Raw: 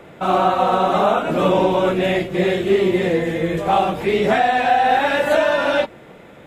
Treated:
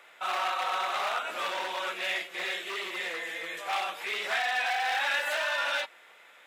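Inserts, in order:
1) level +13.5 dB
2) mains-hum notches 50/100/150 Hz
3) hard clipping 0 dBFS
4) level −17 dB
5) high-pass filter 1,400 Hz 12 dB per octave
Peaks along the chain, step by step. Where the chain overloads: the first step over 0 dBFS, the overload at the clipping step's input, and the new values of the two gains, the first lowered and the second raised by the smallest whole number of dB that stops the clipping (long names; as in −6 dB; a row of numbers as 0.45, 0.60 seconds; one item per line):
+8.5, +8.5, 0.0, −17.0, −17.5 dBFS
step 1, 8.5 dB
step 1 +4.5 dB, step 4 −8 dB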